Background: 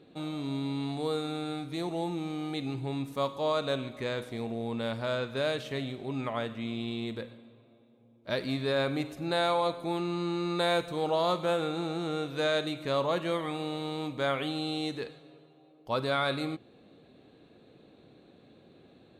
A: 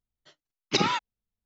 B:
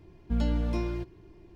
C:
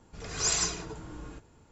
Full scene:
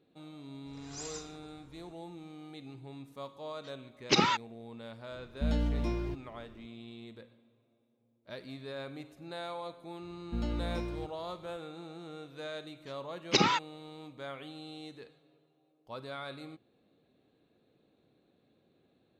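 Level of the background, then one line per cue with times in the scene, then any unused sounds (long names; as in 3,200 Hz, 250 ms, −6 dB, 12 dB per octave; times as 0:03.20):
background −13 dB
0:00.53: mix in C −16.5 dB
0:03.38: mix in A −1.5 dB
0:05.11: mix in B −3 dB
0:10.02: mix in B −6 dB + high-pass filter 51 Hz
0:12.60: mix in A −1.5 dB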